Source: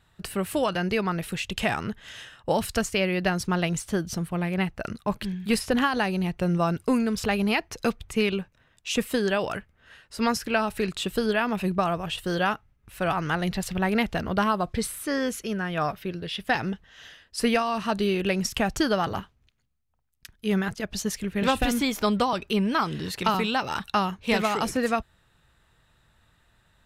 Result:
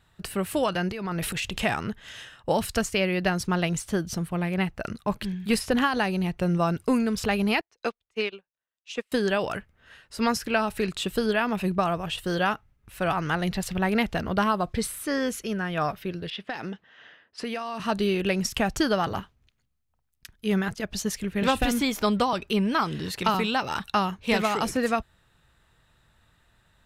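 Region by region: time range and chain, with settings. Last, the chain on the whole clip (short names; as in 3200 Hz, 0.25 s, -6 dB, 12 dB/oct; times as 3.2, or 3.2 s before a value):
0.91–1.62 negative-ratio compressor -28 dBFS, ratio -0.5 + transient shaper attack -8 dB, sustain +7 dB
7.61–9.12 three-band isolator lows -16 dB, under 310 Hz, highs -17 dB, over 7100 Hz + upward expander 2.5:1, over -44 dBFS
16.3–17.8 HPF 200 Hz + low-pass opened by the level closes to 1700 Hz, open at -22 dBFS + compressor 4:1, threshold -29 dBFS
whole clip: dry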